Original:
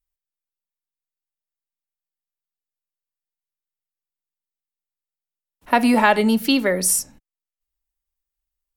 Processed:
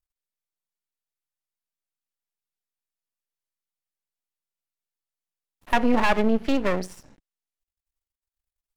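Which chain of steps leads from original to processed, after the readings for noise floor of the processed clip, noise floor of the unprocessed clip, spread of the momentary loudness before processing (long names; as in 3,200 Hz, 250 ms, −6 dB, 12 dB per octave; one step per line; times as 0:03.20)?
below −85 dBFS, below −85 dBFS, 6 LU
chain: treble cut that deepens with the level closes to 2,100 Hz, closed at −16.5 dBFS
half-wave rectification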